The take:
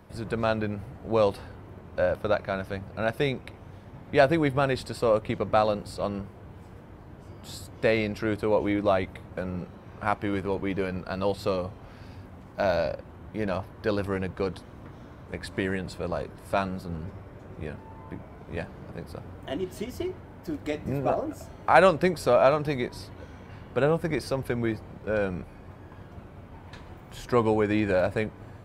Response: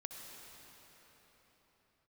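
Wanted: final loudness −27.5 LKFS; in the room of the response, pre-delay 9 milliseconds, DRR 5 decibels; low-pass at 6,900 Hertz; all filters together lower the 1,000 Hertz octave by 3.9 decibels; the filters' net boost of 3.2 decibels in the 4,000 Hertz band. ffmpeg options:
-filter_complex "[0:a]lowpass=6900,equalizer=frequency=1000:width_type=o:gain=-6,equalizer=frequency=4000:width_type=o:gain=4.5,asplit=2[link_01][link_02];[1:a]atrim=start_sample=2205,adelay=9[link_03];[link_02][link_03]afir=irnorm=-1:irlink=0,volume=-2.5dB[link_04];[link_01][link_04]amix=inputs=2:normalize=0,volume=0.5dB"

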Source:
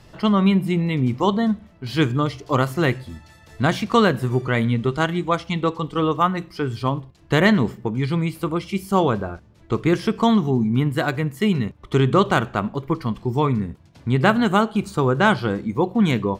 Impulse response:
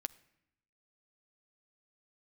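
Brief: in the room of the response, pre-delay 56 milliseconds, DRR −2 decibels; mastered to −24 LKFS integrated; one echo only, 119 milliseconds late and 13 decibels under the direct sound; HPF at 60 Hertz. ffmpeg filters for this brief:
-filter_complex "[0:a]highpass=60,aecho=1:1:119:0.224,asplit=2[link_01][link_02];[1:a]atrim=start_sample=2205,adelay=56[link_03];[link_02][link_03]afir=irnorm=-1:irlink=0,volume=4dB[link_04];[link_01][link_04]amix=inputs=2:normalize=0,volume=-7dB"

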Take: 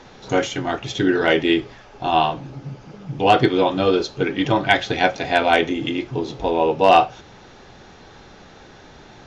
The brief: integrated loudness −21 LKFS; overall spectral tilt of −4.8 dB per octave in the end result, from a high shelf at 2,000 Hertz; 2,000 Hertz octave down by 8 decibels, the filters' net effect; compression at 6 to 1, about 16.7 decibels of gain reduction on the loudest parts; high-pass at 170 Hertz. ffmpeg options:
ffmpeg -i in.wav -af "highpass=170,highshelf=frequency=2000:gain=-9,equalizer=frequency=2000:width_type=o:gain=-5.5,acompressor=threshold=-29dB:ratio=6,volume=12.5dB" out.wav

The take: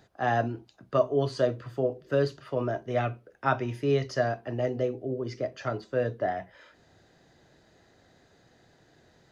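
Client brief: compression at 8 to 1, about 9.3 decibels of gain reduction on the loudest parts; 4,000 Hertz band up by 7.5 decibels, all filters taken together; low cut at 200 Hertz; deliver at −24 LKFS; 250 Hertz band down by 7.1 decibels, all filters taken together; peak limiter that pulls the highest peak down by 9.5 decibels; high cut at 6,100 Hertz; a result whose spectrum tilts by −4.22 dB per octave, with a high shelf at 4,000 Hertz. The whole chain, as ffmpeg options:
ffmpeg -i in.wav -af "highpass=200,lowpass=6100,equalizer=frequency=250:width_type=o:gain=-7.5,highshelf=frequency=4000:gain=7,equalizer=frequency=4000:width_type=o:gain=6.5,acompressor=threshold=-29dB:ratio=8,volume=14.5dB,alimiter=limit=-13dB:level=0:latency=1" out.wav

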